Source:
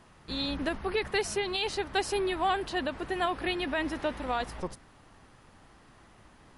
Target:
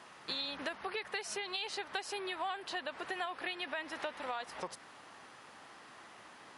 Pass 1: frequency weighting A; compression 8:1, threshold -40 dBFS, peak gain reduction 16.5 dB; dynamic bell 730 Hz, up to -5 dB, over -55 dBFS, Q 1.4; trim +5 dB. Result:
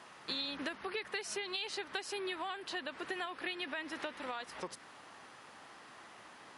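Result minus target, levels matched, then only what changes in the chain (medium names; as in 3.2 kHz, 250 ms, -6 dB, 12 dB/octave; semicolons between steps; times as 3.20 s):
250 Hz band +3.5 dB
change: dynamic bell 290 Hz, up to -5 dB, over -55 dBFS, Q 1.4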